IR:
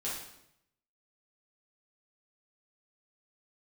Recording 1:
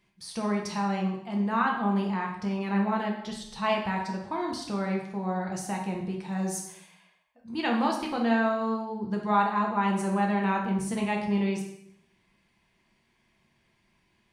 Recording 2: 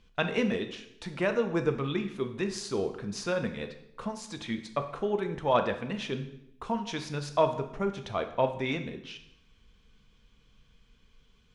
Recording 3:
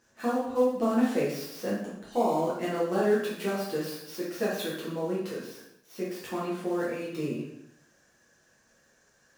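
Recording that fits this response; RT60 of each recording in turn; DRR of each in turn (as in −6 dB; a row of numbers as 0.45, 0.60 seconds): 3; 0.80, 0.80, 0.80 seconds; −0.5, 6.5, −8.0 decibels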